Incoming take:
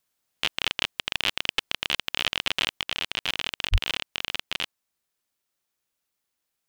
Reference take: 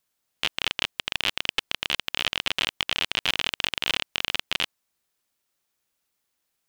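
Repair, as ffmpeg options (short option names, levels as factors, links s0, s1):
-filter_complex "[0:a]asplit=3[s0][s1][s2];[s0]afade=t=out:st=3.71:d=0.02[s3];[s1]highpass=f=140:w=0.5412,highpass=f=140:w=1.3066,afade=t=in:st=3.71:d=0.02,afade=t=out:st=3.83:d=0.02[s4];[s2]afade=t=in:st=3.83:d=0.02[s5];[s3][s4][s5]amix=inputs=3:normalize=0,asetnsamples=n=441:p=0,asendcmd='2.79 volume volume 3.5dB',volume=1"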